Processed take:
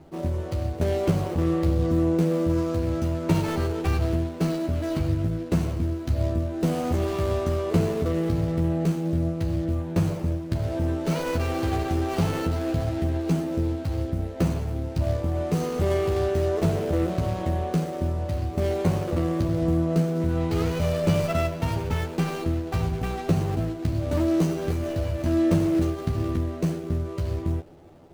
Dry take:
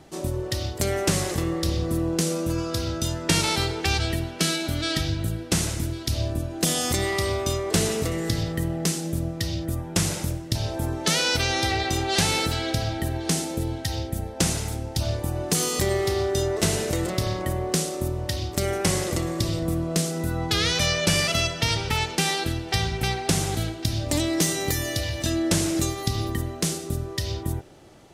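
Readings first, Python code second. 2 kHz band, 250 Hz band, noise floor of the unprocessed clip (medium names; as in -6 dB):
-9.5 dB, +3.0 dB, -36 dBFS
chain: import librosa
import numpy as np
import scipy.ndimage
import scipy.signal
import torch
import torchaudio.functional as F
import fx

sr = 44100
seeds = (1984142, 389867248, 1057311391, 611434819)

y = scipy.signal.medfilt(x, 25)
y = fx.doubler(y, sr, ms=12.0, db=-4)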